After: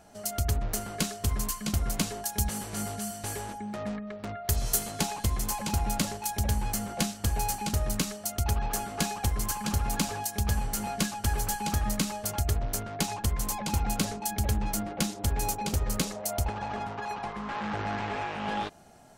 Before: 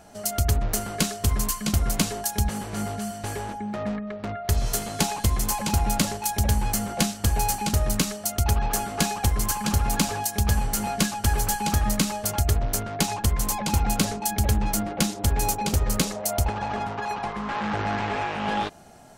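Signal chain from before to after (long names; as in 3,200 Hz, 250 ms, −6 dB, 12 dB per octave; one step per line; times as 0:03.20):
0:02.38–0:04.90: high-shelf EQ 4,200 Hz → 7,000 Hz +10 dB
level −5.5 dB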